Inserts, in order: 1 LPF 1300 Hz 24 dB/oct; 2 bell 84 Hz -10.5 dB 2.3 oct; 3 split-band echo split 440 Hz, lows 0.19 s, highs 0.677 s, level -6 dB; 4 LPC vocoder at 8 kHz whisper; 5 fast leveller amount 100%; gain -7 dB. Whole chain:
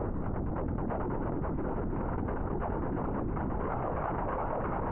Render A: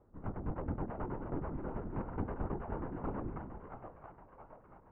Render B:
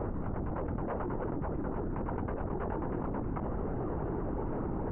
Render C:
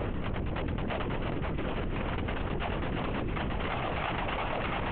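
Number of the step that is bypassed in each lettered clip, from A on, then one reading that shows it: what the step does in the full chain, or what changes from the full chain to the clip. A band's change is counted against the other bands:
5, crest factor change +5.5 dB; 3, 1 kHz band -3.0 dB; 1, 2 kHz band +10.0 dB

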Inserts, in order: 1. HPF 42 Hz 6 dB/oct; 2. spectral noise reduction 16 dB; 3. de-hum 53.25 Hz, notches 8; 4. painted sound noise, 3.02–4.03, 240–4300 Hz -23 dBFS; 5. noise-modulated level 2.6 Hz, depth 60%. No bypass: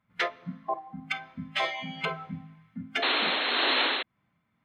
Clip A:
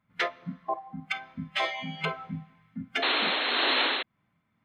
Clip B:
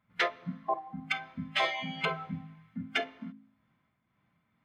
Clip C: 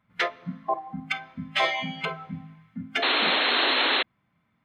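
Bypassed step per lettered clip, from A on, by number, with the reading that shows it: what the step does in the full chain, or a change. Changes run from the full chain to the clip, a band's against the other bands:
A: 3, 125 Hz band +2.0 dB; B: 4, 4 kHz band -7.0 dB; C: 5, loudness change +3.5 LU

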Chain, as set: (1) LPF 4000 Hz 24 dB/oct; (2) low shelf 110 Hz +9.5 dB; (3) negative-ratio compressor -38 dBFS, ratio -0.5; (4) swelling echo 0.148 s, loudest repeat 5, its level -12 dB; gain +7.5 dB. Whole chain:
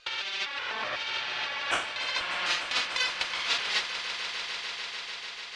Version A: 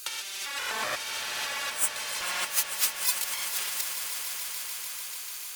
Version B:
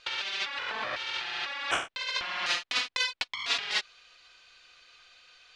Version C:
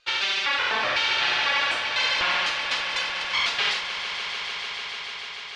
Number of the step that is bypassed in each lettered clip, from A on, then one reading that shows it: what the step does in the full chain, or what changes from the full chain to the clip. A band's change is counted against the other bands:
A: 1, 8 kHz band +16.0 dB; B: 4, echo-to-direct -2.5 dB to none; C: 3, crest factor change -4.5 dB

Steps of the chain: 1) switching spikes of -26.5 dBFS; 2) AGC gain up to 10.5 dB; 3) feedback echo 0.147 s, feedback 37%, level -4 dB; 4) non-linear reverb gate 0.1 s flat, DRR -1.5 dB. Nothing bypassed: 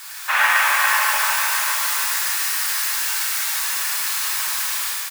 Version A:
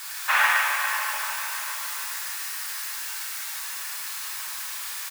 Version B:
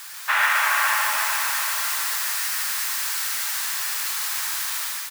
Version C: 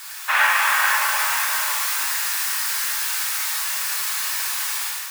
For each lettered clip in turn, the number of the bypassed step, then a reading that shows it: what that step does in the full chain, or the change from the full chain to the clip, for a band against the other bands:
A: 2, crest factor change +4.5 dB; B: 4, echo-to-direct 4.0 dB to -3.5 dB; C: 3, loudness change -1.5 LU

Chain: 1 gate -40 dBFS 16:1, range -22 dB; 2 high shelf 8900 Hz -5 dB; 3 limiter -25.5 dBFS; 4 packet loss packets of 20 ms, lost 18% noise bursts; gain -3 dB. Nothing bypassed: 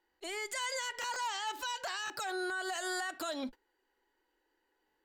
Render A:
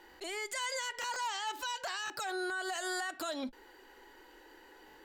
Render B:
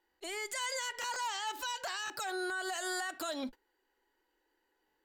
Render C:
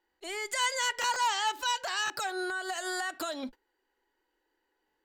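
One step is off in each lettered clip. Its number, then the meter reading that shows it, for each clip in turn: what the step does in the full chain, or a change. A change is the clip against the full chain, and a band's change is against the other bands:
1, momentary loudness spread change +17 LU; 2, 8 kHz band +1.5 dB; 3, mean gain reduction 3.5 dB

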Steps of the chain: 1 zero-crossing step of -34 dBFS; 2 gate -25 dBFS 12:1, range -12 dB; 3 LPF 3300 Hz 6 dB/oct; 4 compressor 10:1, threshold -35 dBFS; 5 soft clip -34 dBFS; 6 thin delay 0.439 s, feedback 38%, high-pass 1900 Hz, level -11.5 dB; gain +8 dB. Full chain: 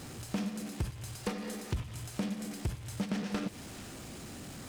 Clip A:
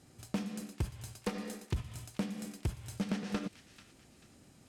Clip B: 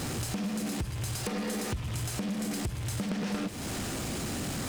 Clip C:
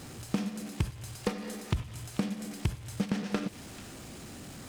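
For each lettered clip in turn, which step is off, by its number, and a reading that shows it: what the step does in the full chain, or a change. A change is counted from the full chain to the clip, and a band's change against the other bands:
1, distortion -11 dB; 2, momentary loudness spread change -8 LU; 5, distortion -11 dB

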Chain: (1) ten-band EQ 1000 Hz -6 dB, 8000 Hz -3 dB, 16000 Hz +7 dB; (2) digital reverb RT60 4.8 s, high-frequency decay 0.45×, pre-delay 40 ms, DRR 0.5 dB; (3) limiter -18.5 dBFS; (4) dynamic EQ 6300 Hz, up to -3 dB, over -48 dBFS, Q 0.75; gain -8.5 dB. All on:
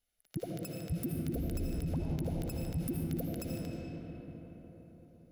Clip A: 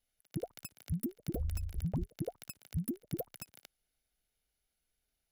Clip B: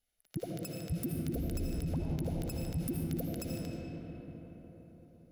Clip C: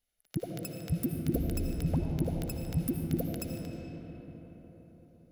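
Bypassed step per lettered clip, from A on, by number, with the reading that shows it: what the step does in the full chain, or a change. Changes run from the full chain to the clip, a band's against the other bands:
2, momentary loudness spread change -4 LU; 4, 4 kHz band +2.0 dB; 3, crest factor change +6.0 dB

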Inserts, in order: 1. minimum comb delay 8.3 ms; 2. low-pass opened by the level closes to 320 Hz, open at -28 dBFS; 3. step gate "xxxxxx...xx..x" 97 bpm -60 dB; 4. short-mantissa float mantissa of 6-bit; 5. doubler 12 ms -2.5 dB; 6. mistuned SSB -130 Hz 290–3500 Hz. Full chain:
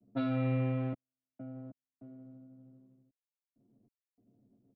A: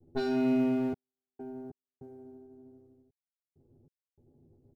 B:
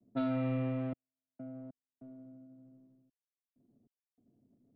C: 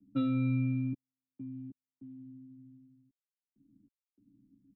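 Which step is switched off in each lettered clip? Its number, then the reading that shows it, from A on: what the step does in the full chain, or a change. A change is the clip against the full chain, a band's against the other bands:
6, 125 Hz band -15.5 dB; 5, 125 Hz band -4.0 dB; 1, 500 Hz band -11.5 dB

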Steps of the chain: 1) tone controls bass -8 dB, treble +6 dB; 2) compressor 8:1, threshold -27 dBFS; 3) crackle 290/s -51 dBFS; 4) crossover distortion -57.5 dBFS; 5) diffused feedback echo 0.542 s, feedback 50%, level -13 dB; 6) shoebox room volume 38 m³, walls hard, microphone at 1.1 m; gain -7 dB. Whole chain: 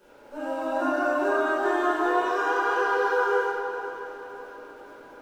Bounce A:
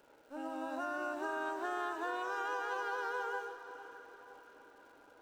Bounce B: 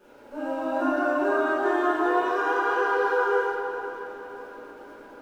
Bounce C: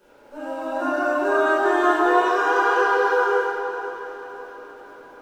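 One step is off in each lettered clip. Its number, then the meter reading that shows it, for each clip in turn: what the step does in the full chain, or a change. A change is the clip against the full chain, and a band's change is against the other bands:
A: 6, echo-to-direct 12.5 dB to -12.0 dB; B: 1, 250 Hz band +2.5 dB; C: 2, mean gain reduction 2.5 dB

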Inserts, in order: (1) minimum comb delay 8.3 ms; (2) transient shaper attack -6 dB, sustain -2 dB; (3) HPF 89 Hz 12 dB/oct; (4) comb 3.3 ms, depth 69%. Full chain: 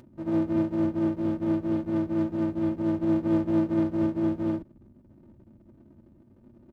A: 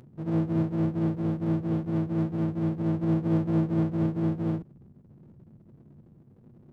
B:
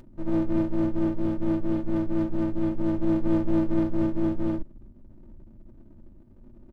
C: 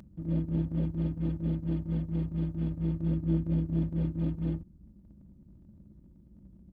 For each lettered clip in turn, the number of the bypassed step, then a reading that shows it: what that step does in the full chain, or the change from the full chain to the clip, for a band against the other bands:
4, 125 Hz band +9.5 dB; 3, crest factor change -2.5 dB; 1, loudness change -4.5 LU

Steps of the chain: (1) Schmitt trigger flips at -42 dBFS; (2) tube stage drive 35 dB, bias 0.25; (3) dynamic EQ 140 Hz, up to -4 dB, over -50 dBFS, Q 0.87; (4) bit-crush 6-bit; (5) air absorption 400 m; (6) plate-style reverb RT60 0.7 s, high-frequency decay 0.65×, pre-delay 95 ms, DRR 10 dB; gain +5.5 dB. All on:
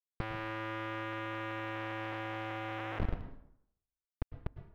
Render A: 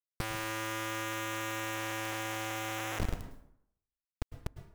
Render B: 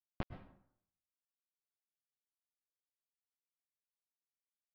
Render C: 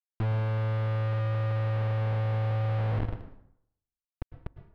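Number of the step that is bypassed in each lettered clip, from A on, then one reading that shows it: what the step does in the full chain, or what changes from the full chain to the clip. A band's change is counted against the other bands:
5, 4 kHz band +7.5 dB; 1, crest factor change +15.5 dB; 3, 125 Hz band +17.0 dB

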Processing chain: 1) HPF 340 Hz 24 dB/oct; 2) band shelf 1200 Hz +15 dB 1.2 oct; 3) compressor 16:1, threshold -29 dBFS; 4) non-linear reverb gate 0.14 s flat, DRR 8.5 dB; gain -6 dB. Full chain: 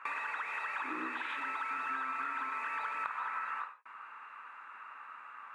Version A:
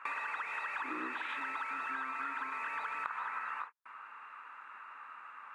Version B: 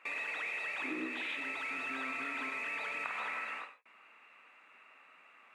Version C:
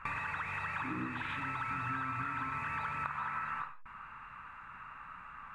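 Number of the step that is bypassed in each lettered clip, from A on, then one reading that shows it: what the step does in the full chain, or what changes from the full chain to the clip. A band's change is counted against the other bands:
4, momentary loudness spread change -1 LU; 2, 1 kHz band -12.5 dB; 1, 250 Hz band +6.5 dB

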